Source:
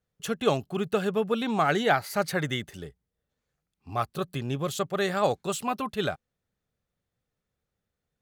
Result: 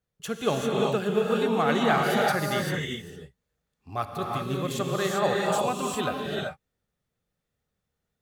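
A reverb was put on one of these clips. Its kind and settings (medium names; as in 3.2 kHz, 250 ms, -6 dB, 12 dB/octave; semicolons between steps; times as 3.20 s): gated-style reverb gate 420 ms rising, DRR -1.5 dB; trim -2 dB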